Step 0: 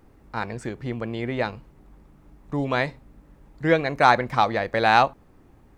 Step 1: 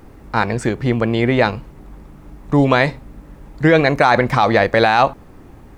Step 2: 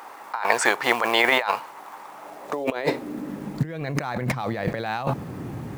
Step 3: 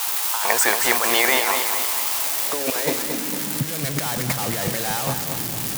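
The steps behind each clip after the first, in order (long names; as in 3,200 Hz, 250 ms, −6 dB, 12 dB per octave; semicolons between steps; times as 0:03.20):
boost into a limiter +14 dB; level −1.5 dB
floating-point word with a short mantissa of 4 bits; high-pass filter sweep 910 Hz → 130 Hz, 0:02.04–0:03.87; compressor whose output falls as the input rises −24 dBFS, ratio −1; level −1.5 dB
spike at every zero crossing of −12 dBFS; feedback echo at a low word length 227 ms, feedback 55%, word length 7 bits, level −7 dB; level −1 dB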